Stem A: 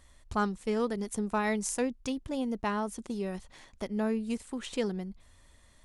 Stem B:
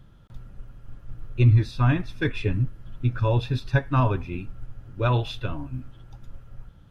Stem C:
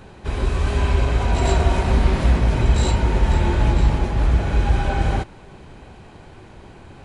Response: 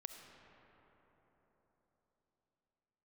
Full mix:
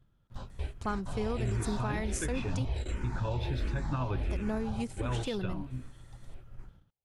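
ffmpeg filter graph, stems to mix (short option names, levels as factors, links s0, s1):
-filter_complex "[0:a]adelay=500,volume=0.841,asplit=3[s0][s1][s2];[s0]atrim=end=2.65,asetpts=PTS-STARTPTS,afade=t=out:st=2.646:d=0.004:c=hsin[s3];[s1]atrim=start=2.65:end=4.19,asetpts=PTS-STARTPTS,volume=0[s4];[s2]atrim=start=4.19,asetpts=PTS-STARTPTS,afade=t=in:d=0.004:c=hsin[s5];[s3][s4][s5]concat=n=3:v=0:a=1[s6];[1:a]alimiter=limit=0.141:level=0:latency=1,volume=0.501,asplit=2[s7][s8];[2:a]asplit=2[s9][s10];[s10]afreqshift=-1.4[s11];[s9][s11]amix=inputs=2:normalize=1,volume=0.211[s12];[s8]apad=whole_len=310539[s13];[s12][s13]sidechaingate=range=0.0316:threshold=0.00708:ratio=16:detection=peak[s14];[s6][s7][s14]amix=inputs=3:normalize=0,agate=range=0.282:threshold=0.00224:ratio=16:detection=peak,alimiter=limit=0.0708:level=0:latency=1:release=104"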